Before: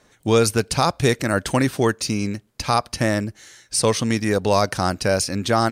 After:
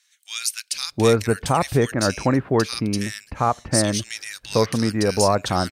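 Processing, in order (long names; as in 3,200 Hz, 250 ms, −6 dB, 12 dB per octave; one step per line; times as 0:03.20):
multiband delay without the direct sound highs, lows 720 ms, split 2,000 Hz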